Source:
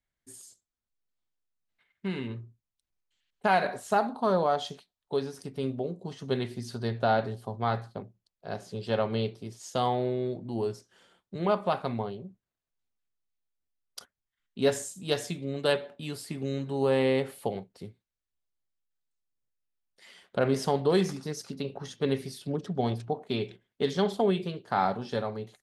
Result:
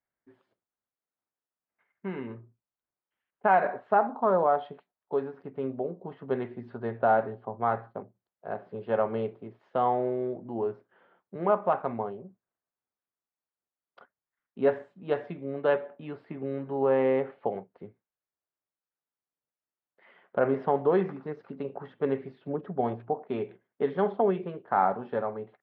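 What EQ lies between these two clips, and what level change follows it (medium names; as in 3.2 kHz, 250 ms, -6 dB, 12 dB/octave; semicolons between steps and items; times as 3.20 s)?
high-pass 610 Hz 6 dB/octave; low-pass 1.6 kHz 12 dB/octave; distance through air 490 m; +7.0 dB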